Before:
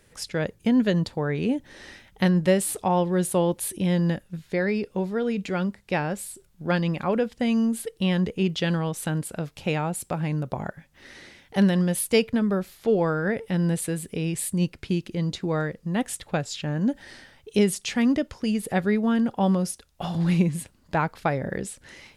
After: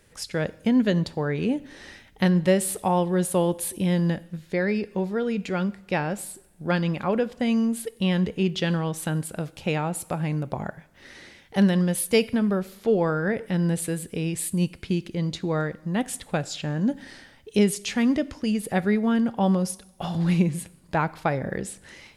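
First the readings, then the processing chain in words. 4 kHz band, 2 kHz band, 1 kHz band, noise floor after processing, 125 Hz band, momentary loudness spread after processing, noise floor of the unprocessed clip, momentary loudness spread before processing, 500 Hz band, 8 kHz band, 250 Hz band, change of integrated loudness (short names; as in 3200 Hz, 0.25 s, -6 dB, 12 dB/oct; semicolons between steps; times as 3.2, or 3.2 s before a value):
0.0 dB, 0.0 dB, 0.0 dB, -54 dBFS, 0.0 dB, 9 LU, -60 dBFS, 9 LU, 0.0 dB, 0.0 dB, 0.0 dB, 0.0 dB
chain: two-slope reverb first 0.75 s, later 1.9 s, from -17 dB, DRR 17 dB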